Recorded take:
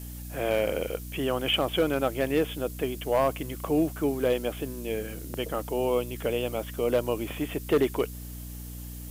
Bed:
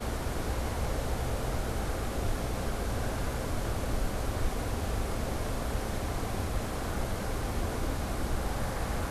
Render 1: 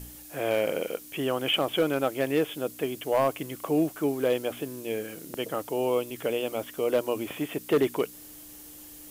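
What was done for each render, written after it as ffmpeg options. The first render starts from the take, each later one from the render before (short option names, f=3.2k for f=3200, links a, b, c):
-af "bandreject=f=60:t=h:w=4,bandreject=f=120:t=h:w=4,bandreject=f=180:t=h:w=4,bandreject=f=240:t=h:w=4"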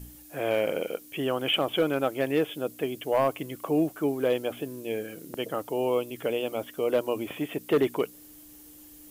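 -af "afftdn=nr=6:nf=-47"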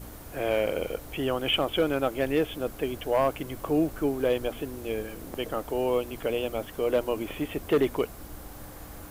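-filter_complex "[1:a]volume=-12dB[a];[0:a][a]amix=inputs=2:normalize=0"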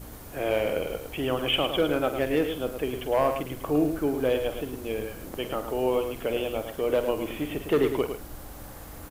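-filter_complex "[0:a]asplit=2[a][b];[b]adelay=47,volume=-11.5dB[c];[a][c]amix=inputs=2:normalize=0,asplit=2[d][e];[e]aecho=0:1:108:0.398[f];[d][f]amix=inputs=2:normalize=0"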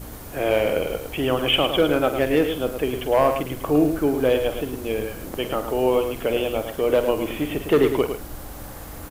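-af "volume=5.5dB"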